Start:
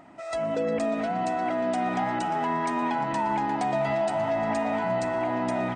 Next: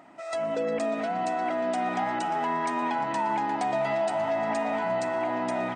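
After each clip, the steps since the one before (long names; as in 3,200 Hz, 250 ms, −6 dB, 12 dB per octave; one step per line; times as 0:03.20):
high-pass filter 280 Hz 6 dB per octave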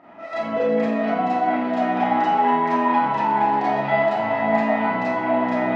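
high-frequency loss of the air 270 metres
four-comb reverb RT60 0.6 s, combs from 28 ms, DRR −9 dB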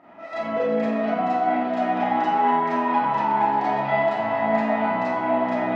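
feedback echo with a band-pass in the loop 96 ms, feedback 74%, band-pass 1,100 Hz, level −7.5 dB
level −2.5 dB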